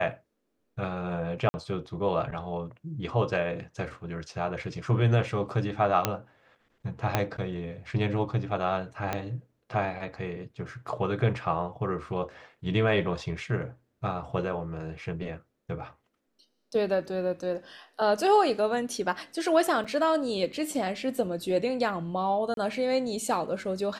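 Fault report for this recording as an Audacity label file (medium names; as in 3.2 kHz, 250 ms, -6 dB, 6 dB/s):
1.490000	1.540000	dropout 50 ms
6.050000	6.050000	pop -7 dBFS
7.150000	7.150000	pop -9 dBFS
9.130000	9.130000	pop -14 dBFS
19.840000	19.850000	dropout 5.5 ms
22.540000	22.570000	dropout 32 ms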